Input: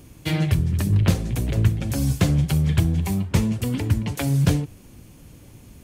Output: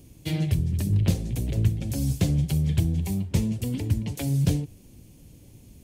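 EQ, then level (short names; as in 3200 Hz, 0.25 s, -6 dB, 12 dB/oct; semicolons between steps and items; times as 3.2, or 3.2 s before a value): bell 1300 Hz -11.5 dB 1.4 oct; -3.5 dB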